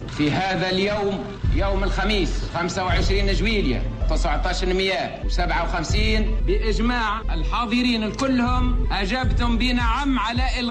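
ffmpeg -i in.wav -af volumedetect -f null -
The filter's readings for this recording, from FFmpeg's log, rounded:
mean_volume: -20.9 dB
max_volume: -9.8 dB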